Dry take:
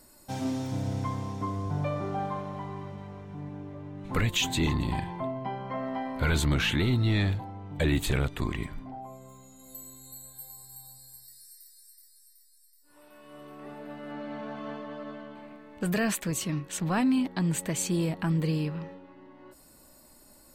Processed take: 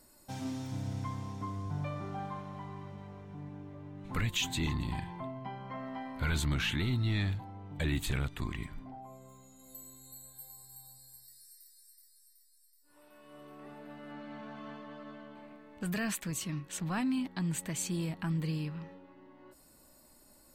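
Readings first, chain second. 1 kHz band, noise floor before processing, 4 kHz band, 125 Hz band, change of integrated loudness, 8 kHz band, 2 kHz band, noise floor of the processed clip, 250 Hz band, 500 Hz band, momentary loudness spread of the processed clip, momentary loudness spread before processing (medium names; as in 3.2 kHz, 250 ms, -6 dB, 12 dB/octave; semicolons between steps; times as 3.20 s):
-7.0 dB, -57 dBFS, -5.0 dB, -5.5 dB, -6.0 dB, -5.0 dB, -5.5 dB, -62 dBFS, -7.0 dB, -10.5 dB, 20 LU, 20 LU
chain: dynamic bell 490 Hz, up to -7 dB, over -45 dBFS, Q 1.1; trim -5 dB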